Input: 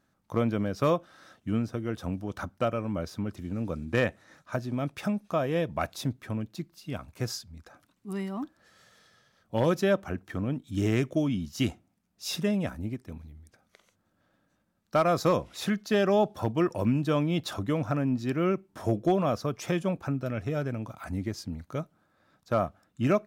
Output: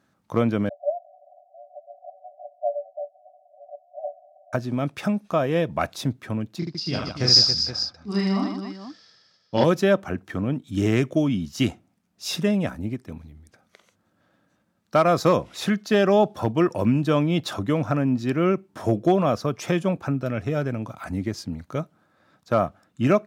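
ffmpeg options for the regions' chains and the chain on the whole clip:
-filter_complex "[0:a]asettb=1/sr,asplit=3[a][b][c];[a]atrim=end=0.694[d];[b]atrim=start=0.69:end=4.53,asetpts=PTS-STARTPTS,afade=t=in:d=0.004:c=qsin,afade=t=out:st=3.836:d=0.004:c=qsin,aeval=exprs='val(0)+0.5*0.00944*sgn(val(0))':c=same,asuperpass=centerf=660:order=20:qfactor=3.6,aecho=1:1:3.9:0.42,atrim=end_sample=169344[e];[c]atrim=start=4.526[f];[d][e]acrossfade=d=0.004:c1=hsin:c2=qsin[g];[g][f]acrossfade=d=0.004:c1=qsin:c2=hsin,asettb=1/sr,asplit=3[h][i][j];[h]atrim=end=6.594[k];[i]atrim=start=6.59:end=9.64,asetpts=PTS-STARTPTS,afade=t=in:d=0.004:c=qsin,afade=t=out:st=3.046:d=0.004:c=qsin,agate=range=-33dB:threshold=-54dB:ratio=3:release=100:detection=peak,lowpass=f=5k:t=q:w=9.3,aecho=1:1:30|78|154.8|277.7|474.3:0.794|0.631|0.501|0.398|0.316,atrim=end_sample=134505[l];[j]atrim=start=9.636[m];[k][l]acrossfade=d=0.004:c1=hsin:c2=qsin[n];[n][m]acrossfade=d=0.004:c1=qsin:c2=hsin,highpass=90,highshelf=f=10k:g=-6,volume=5.5dB"

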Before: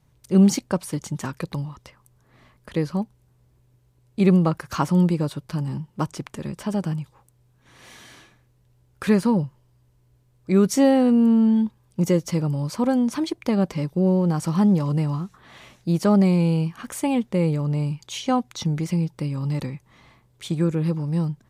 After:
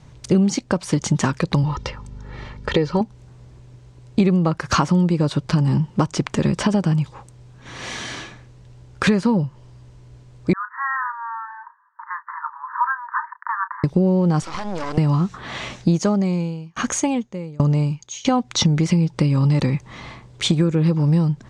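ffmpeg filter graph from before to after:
-filter_complex "[0:a]asettb=1/sr,asplit=3[a][b][c];[a]atrim=end=1.634[d];[b]atrim=start=1.63:end=3.01,asetpts=PTS-STARTPTS,afade=t=in:d=0.004:c=qsin,afade=t=out:st=1.376:d=0.004:c=qsin,lowpass=6k,aecho=1:1:2.2:0.74,atrim=end_sample=60858,aeval=exprs='val(0)+0.00251*(sin(2*PI*50*n/s)+sin(2*PI*2*50*n/s)/2+sin(2*PI*3*50*n/s)/3+sin(2*PI*4*50*n/s)/4+sin(2*PI*5*50*n/s)/5)':c=same[e];[c]atrim=start=3.006[f];[d][e]acrossfade=d=0.004:c1=hsin:c2=qsin[g];[g][f]acrossfade=d=0.004:c1=qsin:c2=hsin,asettb=1/sr,asplit=3[h][i][j];[h]atrim=end=10.534[k];[i]atrim=start=10.53:end=13.84,asetpts=PTS-STARTPTS,afade=t=in:d=0.004:c=qsin,afade=t=out:st=3.306:d=0.004:c=qsin,asuperpass=centerf=1300:order=20:qfactor=1.4,asplit=2[l][m];[m]adelay=32,volume=-13dB[n];[l][n]amix=inputs=2:normalize=0,atrim=end_sample=145971[o];[j]atrim=start=13.836[p];[k][o]acrossfade=d=0.004:c1=hsin:c2=qsin[q];[q][p]acrossfade=d=0.004:c1=qsin:c2=hsin,asettb=1/sr,asplit=3[r][s][t];[r]atrim=end=14.424[u];[s]atrim=start=14.42:end=14.98,asetpts=PTS-STARTPTS,afade=t=in:d=0.004:c=qsin,afade=t=out:st=0.556:d=0.004:c=qsin,highpass=540,acompressor=threshold=-35dB:ratio=5:attack=3.2:release=140:knee=1:detection=peak,aeval=exprs='max(val(0),0)':c=same[v];[t]atrim=start=14.976[w];[u][v]acrossfade=d=0.004:c1=hsin:c2=qsin[x];[x][w]acrossfade=d=0.004:c1=qsin:c2=hsin,asettb=1/sr,asplit=3[y][z][aa];[y]atrim=end=15.934[ab];[z]atrim=start=15.93:end=18.25,asetpts=PTS-STARTPTS,afade=t=in:d=0.004:c=qsin,afade=t=out:st=2.316:d=0.004:c=qsin,equalizer=f=6.5k:w=7.1:g=14,aeval=exprs='val(0)*pow(10,-33*if(lt(mod(1.2*n/s,1),2*abs(1.2)/1000),1-mod(1.2*n/s,1)/(2*abs(1.2)/1000),(mod(1.2*n/s,1)-2*abs(1.2)/1000)/(1-2*abs(1.2)/1000))/20)':c=same[ac];[aa]atrim=start=18.246[ad];[ab][ac]acrossfade=d=0.004:c1=hsin:c2=qsin[ae];[ae][ad]acrossfade=d=0.004:c1=qsin:c2=hsin,lowpass=f=7.6k:w=0.5412,lowpass=f=7.6k:w=1.3066,acompressor=threshold=-30dB:ratio=12,alimiter=level_in=21.5dB:limit=-1dB:release=50:level=0:latency=1,volume=-5.5dB"

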